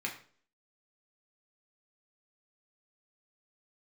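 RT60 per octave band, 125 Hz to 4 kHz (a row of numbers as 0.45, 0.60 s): 0.50, 0.50, 0.50, 0.40, 0.40, 0.40 s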